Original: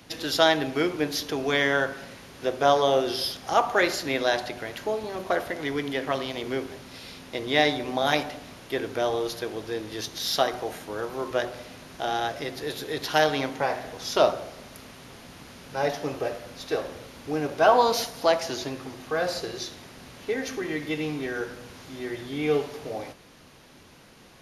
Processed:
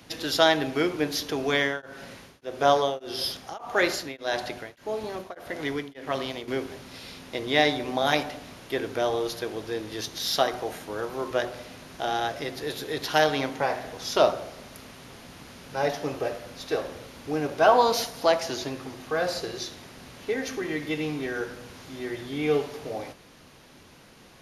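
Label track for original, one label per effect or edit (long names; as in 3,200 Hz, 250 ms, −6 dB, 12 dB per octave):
1.530000	6.480000	tremolo along a rectified sine nulls at 1.7 Hz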